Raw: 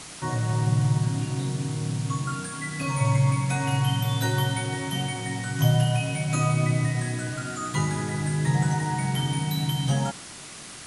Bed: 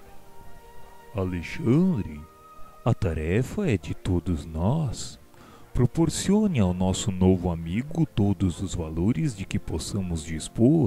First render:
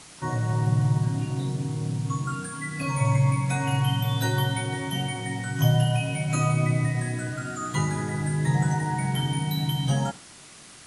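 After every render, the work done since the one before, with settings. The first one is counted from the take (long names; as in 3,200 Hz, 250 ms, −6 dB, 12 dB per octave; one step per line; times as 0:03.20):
noise reduction from a noise print 6 dB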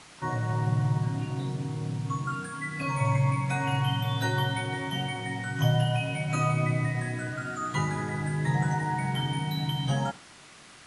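low-pass filter 2,000 Hz 6 dB per octave
tilt shelving filter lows −4 dB, about 750 Hz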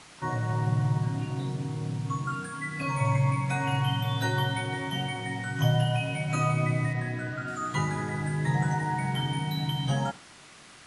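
0:06.93–0:07.48: Bessel low-pass filter 4,700 Hz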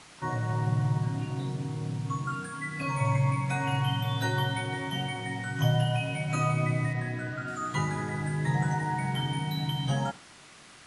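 level −1 dB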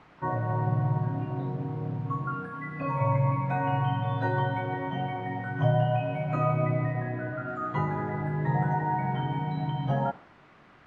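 low-pass filter 1,600 Hz 12 dB per octave
dynamic equaliser 640 Hz, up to +6 dB, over −47 dBFS, Q 0.96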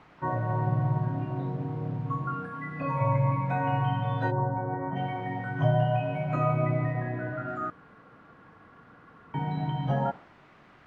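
0:04.30–0:04.95: low-pass filter 1,000 Hz → 1,700 Hz 24 dB per octave
0:07.70–0:09.34: fill with room tone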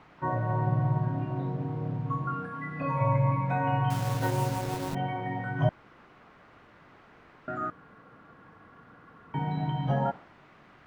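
0:03.90–0:04.95: hold until the input has moved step −32 dBFS
0:05.69–0:07.48: fill with room tone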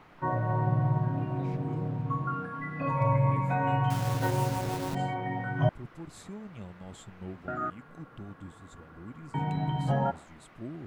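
mix in bed −21.5 dB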